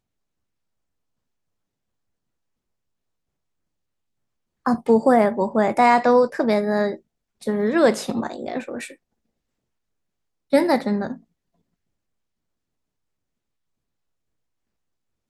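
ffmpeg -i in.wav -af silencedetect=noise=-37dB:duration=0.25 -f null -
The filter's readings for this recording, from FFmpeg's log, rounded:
silence_start: 0.00
silence_end: 4.66 | silence_duration: 4.66
silence_start: 6.97
silence_end: 7.42 | silence_duration: 0.46
silence_start: 8.94
silence_end: 10.53 | silence_duration: 1.59
silence_start: 11.17
silence_end: 15.30 | silence_duration: 4.13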